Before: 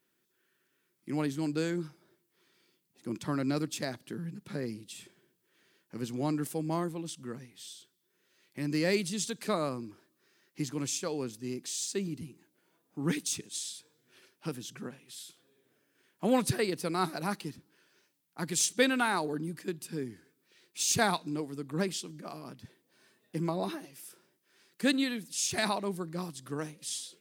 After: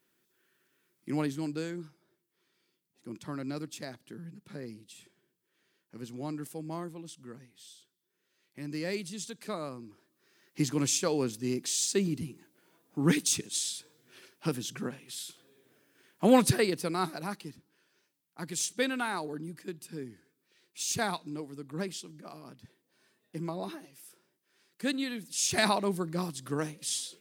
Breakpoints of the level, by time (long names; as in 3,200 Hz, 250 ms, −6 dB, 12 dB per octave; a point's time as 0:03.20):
0:01.11 +2 dB
0:01.77 −6 dB
0:09.79 −6 dB
0:10.60 +5.5 dB
0:16.40 +5.5 dB
0:17.34 −4 dB
0:24.99 −4 dB
0:25.57 +4 dB